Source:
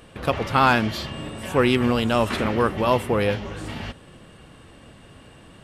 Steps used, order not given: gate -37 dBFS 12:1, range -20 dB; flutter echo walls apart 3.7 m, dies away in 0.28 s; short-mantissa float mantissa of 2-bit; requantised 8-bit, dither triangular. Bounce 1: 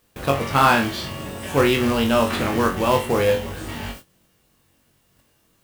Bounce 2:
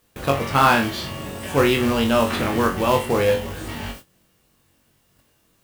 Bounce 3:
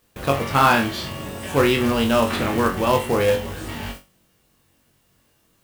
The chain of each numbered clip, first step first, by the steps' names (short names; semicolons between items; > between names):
requantised > short-mantissa float > flutter echo > gate; short-mantissa float > requantised > flutter echo > gate; requantised > gate > flutter echo > short-mantissa float